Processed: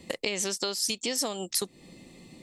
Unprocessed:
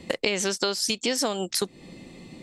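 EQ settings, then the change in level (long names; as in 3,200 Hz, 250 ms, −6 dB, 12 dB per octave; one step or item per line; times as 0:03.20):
high-shelf EQ 7,300 Hz +10.5 dB
notch filter 1,500 Hz, Q 8.6
−6.0 dB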